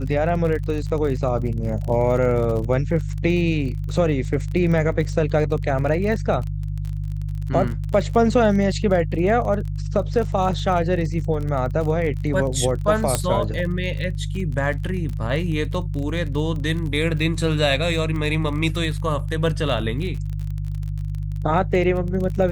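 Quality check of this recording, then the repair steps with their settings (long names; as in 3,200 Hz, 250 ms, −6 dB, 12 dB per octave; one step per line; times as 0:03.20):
surface crackle 32 per second −28 dBFS
mains hum 50 Hz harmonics 3 −26 dBFS
0:13.15: click −4 dBFS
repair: click removal
hum removal 50 Hz, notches 3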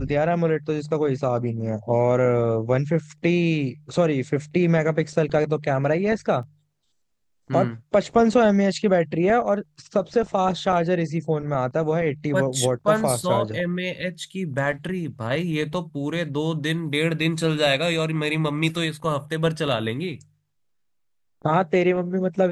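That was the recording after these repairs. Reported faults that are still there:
none of them is left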